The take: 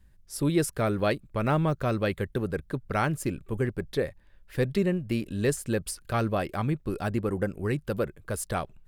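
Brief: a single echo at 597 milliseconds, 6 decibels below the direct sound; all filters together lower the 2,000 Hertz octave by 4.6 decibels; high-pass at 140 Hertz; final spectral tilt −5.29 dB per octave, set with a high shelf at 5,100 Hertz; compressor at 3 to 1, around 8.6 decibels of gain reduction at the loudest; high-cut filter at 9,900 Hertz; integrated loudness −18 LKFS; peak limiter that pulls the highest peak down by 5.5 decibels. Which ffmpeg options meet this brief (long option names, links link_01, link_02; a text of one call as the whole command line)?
ffmpeg -i in.wav -af "highpass=140,lowpass=9900,equalizer=frequency=2000:width_type=o:gain=-7,highshelf=frequency=5100:gain=5,acompressor=threshold=-32dB:ratio=3,alimiter=level_in=1dB:limit=-24dB:level=0:latency=1,volume=-1dB,aecho=1:1:597:0.501,volume=18.5dB" out.wav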